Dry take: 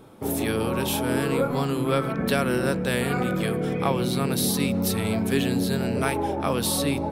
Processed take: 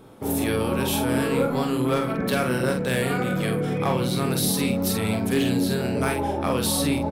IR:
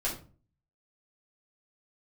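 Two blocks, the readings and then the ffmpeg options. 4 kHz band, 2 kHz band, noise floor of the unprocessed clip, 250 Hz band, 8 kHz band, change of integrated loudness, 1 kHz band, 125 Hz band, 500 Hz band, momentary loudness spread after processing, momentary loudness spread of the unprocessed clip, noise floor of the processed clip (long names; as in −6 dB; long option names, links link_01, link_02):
+1.0 dB, +1.0 dB, −29 dBFS, +1.0 dB, +1.0 dB, +1.0 dB, +0.5 dB, +1.0 dB, +1.0 dB, 2 LU, 2 LU, −27 dBFS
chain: -filter_complex "[0:a]asoftclip=type=hard:threshold=-15.5dB,asplit=2[link_01][link_02];[link_02]adelay=47,volume=-5dB[link_03];[link_01][link_03]amix=inputs=2:normalize=0"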